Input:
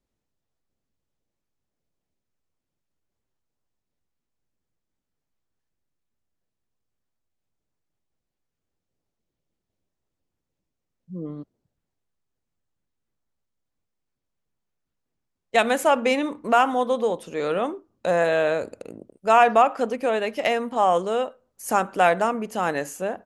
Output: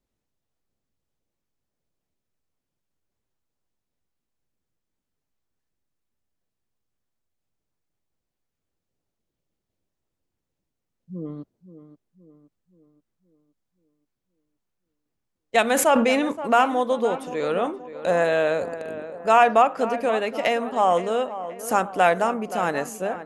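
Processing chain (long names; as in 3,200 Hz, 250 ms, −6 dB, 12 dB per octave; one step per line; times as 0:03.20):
tape delay 524 ms, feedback 55%, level −12 dB, low-pass 2,000 Hz
0:15.68–0:16.32: level that may fall only so fast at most 35 dB per second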